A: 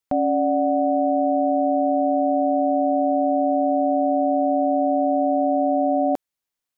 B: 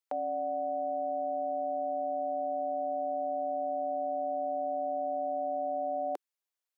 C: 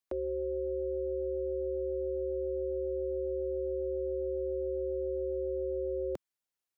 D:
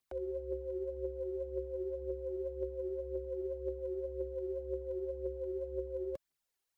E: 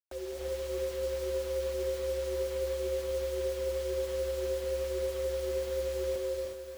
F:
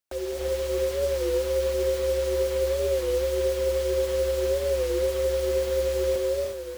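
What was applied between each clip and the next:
Butterworth high-pass 370 Hz 36 dB per octave; dynamic equaliser 650 Hz, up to −6 dB, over −36 dBFS, Q 2; level −6.5 dB
frequency shifter −210 Hz; level −1 dB
brickwall limiter −37 dBFS, peak gain reduction 11 dB; phase shifter 1.9 Hz, delay 3 ms, feedback 59%; level +2 dB
bit reduction 8 bits; reverb whose tail is shaped and stops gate 400 ms rising, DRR −1.5 dB; feedback echo at a low word length 298 ms, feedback 55%, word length 8 bits, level −9.5 dB
wow of a warped record 33 1/3 rpm, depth 100 cents; level +8 dB

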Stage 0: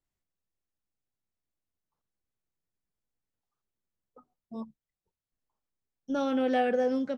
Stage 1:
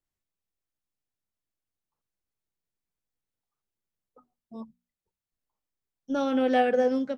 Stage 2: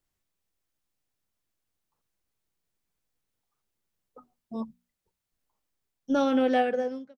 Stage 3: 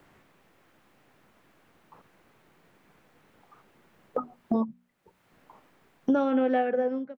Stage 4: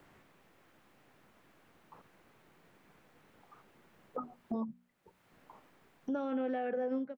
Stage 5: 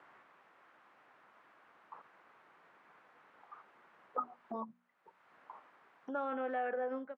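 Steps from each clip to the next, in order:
mains-hum notches 60/120/180/240 Hz; expander for the loud parts 1.5 to 1, over −36 dBFS; level +4.5 dB
fade-out on the ending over 1.45 s; level +6.5 dB
multiband upward and downward compressor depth 100%
brickwall limiter −25.5 dBFS, peak gain reduction 11.5 dB; level −2.5 dB
resonant band-pass 1,200 Hz, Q 1.3; level +6.5 dB

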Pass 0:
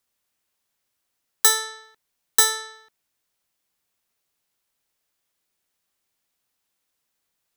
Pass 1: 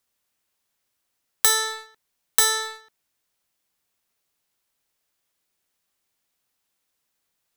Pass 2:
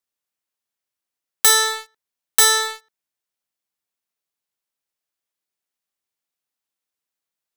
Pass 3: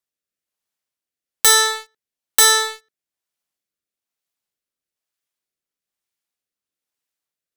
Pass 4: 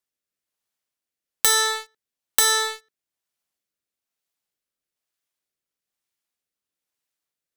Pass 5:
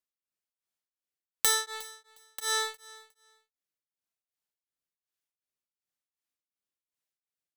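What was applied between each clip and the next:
leveller curve on the samples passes 2; downward compressor 3 to 1, threshold −24 dBFS, peak gain reduction 11.5 dB; level +4.5 dB
leveller curve on the samples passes 3; low-shelf EQ 110 Hz −7.5 dB; level −4 dB
rotating-speaker cabinet horn 1.1 Hz; level +2.5 dB
downward compressor, threshold −15 dBFS, peak gain reduction 7 dB
repeating echo 359 ms, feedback 19%, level −20.5 dB; tremolo along a rectified sine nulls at 2.7 Hz; level −6.5 dB

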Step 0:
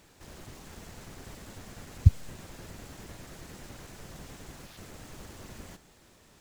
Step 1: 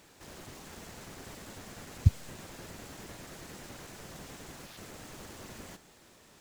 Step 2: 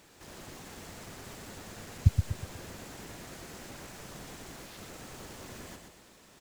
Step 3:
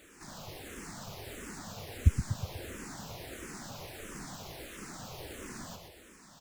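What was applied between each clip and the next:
low-shelf EQ 110 Hz −9.5 dB; level +1.5 dB
repeating echo 122 ms, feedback 42%, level −6 dB
frequency shifter mixed with the dry sound −1.5 Hz; level +4.5 dB

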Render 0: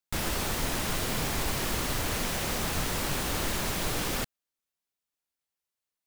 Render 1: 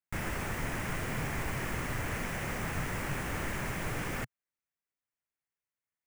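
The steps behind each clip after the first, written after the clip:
graphic EQ with 10 bands 125 Hz +6 dB, 2,000 Hz +8 dB, 4,000 Hz −12 dB, 16,000 Hz −8 dB
level −5.5 dB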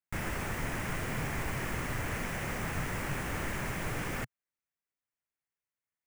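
no processing that can be heard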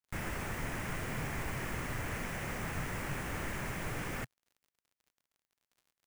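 surface crackle 56 per second −53 dBFS
level −3 dB

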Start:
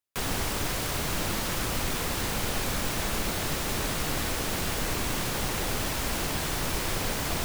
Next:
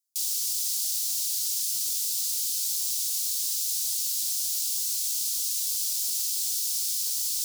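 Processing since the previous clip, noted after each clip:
inverse Chebyshev high-pass filter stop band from 1,100 Hz, stop band 70 dB
level +8 dB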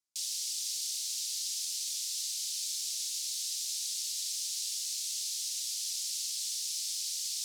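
high-frequency loss of the air 62 metres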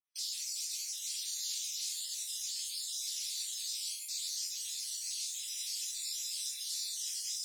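time-frequency cells dropped at random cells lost 51%
four-pole ladder high-pass 930 Hz, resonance 25%
rectangular room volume 180 cubic metres, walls mixed, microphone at 2 metres

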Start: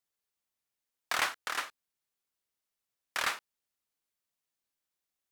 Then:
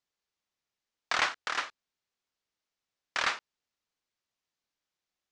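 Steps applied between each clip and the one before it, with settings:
low-pass filter 6,500 Hz 24 dB per octave
level +2.5 dB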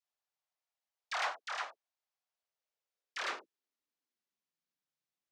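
all-pass dispersion lows, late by 71 ms, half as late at 740 Hz
tube saturation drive 20 dB, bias 0.25
high-pass filter sweep 690 Hz → 110 Hz, 0:02.30–0:05.31
level −7.5 dB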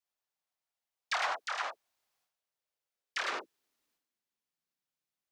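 transient designer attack +7 dB, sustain +11 dB

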